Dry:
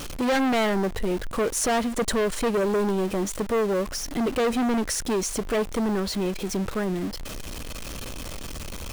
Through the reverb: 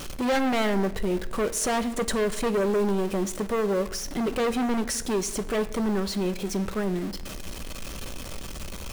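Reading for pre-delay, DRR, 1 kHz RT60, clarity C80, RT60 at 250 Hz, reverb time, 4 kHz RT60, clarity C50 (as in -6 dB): 5 ms, 10.0 dB, 0.85 s, 17.5 dB, 1.3 s, 1.0 s, 0.70 s, 15.5 dB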